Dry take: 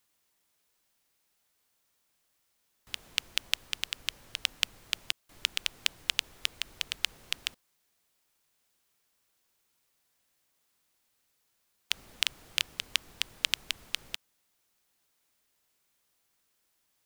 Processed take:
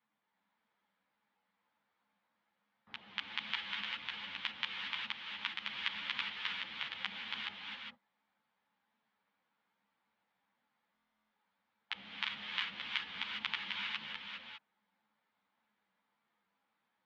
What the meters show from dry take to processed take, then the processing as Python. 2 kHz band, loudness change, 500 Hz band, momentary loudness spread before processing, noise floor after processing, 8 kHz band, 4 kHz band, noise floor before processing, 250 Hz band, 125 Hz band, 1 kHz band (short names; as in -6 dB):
-2.5 dB, -6.5 dB, -6.0 dB, 6 LU, -84 dBFS, under -25 dB, -7.5 dB, -76 dBFS, +2.5 dB, -5.5 dB, +2.5 dB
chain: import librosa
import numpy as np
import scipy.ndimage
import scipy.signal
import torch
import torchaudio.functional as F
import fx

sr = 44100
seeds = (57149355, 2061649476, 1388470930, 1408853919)

y = fx.spec_gate(x, sr, threshold_db=-20, keep='strong')
y = fx.cabinet(y, sr, low_hz=180.0, low_slope=12, high_hz=2900.0, hz=(200.0, 380.0, 620.0, 880.0, 2700.0), db=(9, -9, -3, 5, -8))
y = fx.rev_gated(y, sr, seeds[0], gate_ms=430, shape='rising', drr_db=-0.5)
y = fx.buffer_glitch(y, sr, at_s=(10.92,), block=1024, repeats=16)
y = fx.ensemble(y, sr)
y = y * 10.0 ** (1.5 / 20.0)